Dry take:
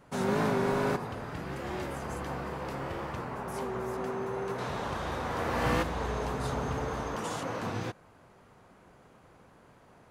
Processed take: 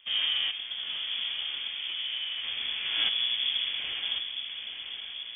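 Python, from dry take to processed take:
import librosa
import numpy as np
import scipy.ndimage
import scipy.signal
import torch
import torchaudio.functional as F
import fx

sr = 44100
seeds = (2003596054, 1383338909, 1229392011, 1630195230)

y = fx.low_shelf(x, sr, hz=220.0, db=10.5)
y = fx.stretch_vocoder(y, sr, factor=0.53)
y = fx.echo_diffused(y, sr, ms=960, feedback_pct=59, wet_db=-8.0)
y = fx.freq_invert(y, sr, carrier_hz=3400)
y = y * librosa.db_to_amplitude(-3.0)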